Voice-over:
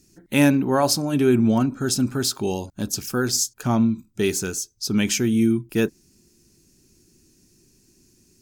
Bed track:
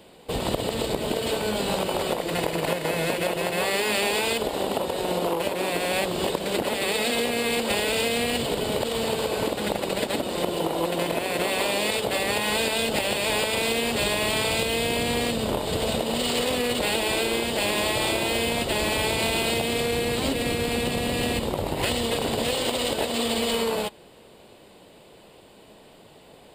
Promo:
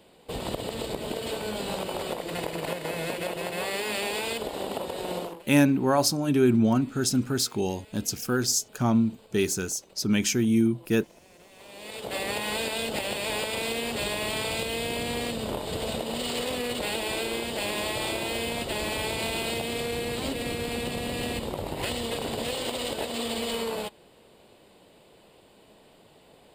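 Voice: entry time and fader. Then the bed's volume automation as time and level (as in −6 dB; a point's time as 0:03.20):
5.15 s, −3.0 dB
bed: 0:05.20 −6 dB
0:05.51 −29 dB
0:11.50 −29 dB
0:12.17 −5.5 dB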